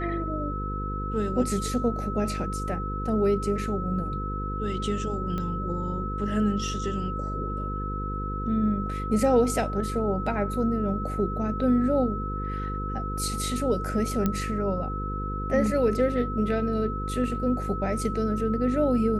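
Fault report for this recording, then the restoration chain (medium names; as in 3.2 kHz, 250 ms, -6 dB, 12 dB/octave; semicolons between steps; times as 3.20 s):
buzz 50 Hz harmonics 10 -32 dBFS
whine 1.3 kHz -33 dBFS
5.38 s: pop -20 dBFS
14.26 s: pop -12 dBFS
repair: de-click; band-stop 1.3 kHz, Q 30; de-hum 50 Hz, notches 10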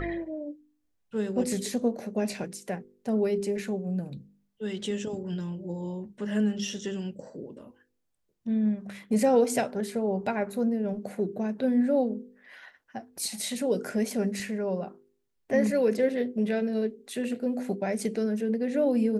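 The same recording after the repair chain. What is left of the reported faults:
nothing left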